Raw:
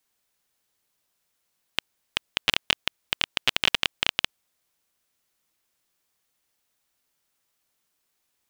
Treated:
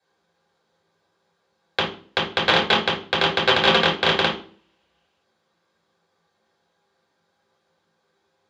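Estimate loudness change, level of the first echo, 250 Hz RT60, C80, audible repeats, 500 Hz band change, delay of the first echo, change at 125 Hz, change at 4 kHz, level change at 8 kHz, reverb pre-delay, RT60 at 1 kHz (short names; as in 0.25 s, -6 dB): +6.5 dB, none, 0.60 s, 12.0 dB, none, +18.5 dB, none, +14.5 dB, +4.5 dB, -3.5 dB, 3 ms, 0.40 s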